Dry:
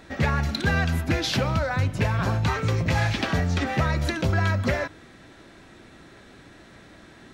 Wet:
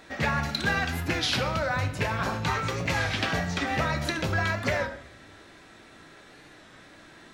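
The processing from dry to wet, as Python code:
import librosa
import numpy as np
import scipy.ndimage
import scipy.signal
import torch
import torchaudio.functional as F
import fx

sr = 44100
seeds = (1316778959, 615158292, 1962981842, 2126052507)

y = fx.low_shelf(x, sr, hz=350.0, db=-9.0)
y = fx.room_shoebox(y, sr, seeds[0], volume_m3=180.0, walls='mixed', distance_m=0.44)
y = fx.record_warp(y, sr, rpm=33.33, depth_cents=100.0)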